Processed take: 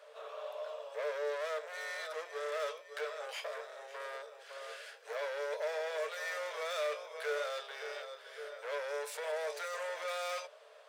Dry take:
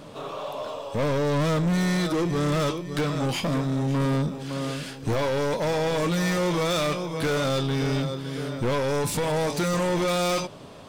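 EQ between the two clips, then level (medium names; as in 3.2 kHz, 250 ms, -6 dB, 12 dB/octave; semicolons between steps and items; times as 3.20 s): rippled Chebyshev high-pass 430 Hz, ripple 9 dB; -6.5 dB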